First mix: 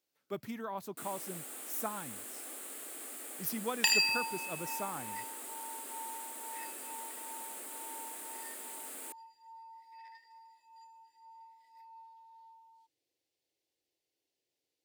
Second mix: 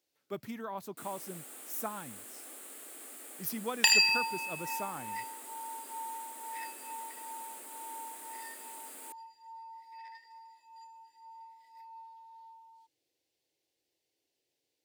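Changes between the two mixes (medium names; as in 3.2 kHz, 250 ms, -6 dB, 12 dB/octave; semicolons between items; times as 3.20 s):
first sound -3.0 dB; second sound +4.0 dB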